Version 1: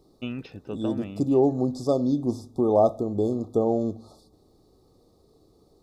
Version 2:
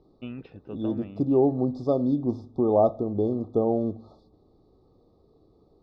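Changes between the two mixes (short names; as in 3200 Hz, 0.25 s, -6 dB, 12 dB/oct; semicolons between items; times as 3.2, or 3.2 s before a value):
first voice -4.0 dB; master: add air absorption 280 m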